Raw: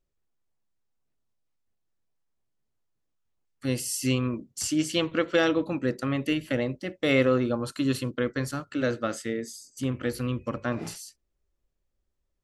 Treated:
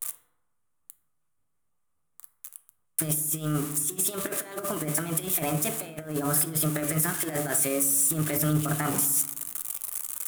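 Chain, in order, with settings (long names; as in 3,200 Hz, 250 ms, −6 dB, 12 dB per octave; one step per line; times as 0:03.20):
spike at every zero crossing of −23 dBFS
parametric band 980 Hz +11 dB 0.32 octaves
hum removal 120.9 Hz, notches 28
tape wow and flutter 23 cents
compressor whose output falls as the input rises −29 dBFS, ratio −0.5
octave-band graphic EQ 125/250/4,000/8,000 Hz +4/−4/−9/+9 dB
change of speed 1.21×
on a send: convolution reverb RT60 1.0 s, pre-delay 3 ms, DRR 10 dB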